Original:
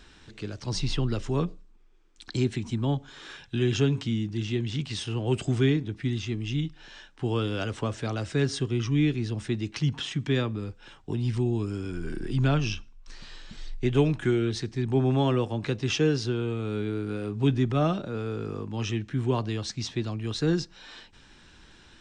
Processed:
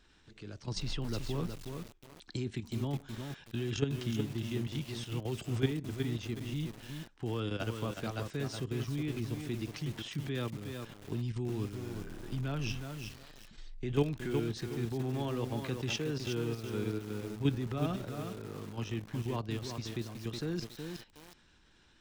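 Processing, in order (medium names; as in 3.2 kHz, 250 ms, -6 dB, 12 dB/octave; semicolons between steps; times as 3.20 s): level held to a coarse grid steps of 10 dB; bit-crushed delay 368 ms, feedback 35%, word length 7-bit, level -5 dB; trim -4.5 dB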